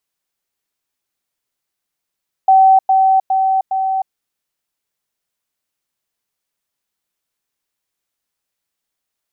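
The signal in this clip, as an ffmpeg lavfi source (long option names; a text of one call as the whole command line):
ffmpeg -f lavfi -i "aevalsrc='pow(10,(-5.5-3*floor(t/0.41))/20)*sin(2*PI*766*t)*clip(min(mod(t,0.41),0.31-mod(t,0.41))/0.005,0,1)':duration=1.64:sample_rate=44100" out.wav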